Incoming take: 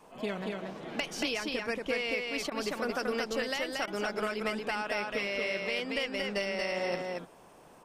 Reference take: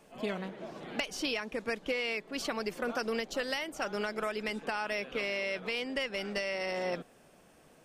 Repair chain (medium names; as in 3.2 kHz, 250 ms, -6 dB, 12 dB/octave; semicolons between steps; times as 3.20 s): interpolate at 2.50/3.86 s, 14 ms; noise print and reduce 13 dB; inverse comb 230 ms -3 dB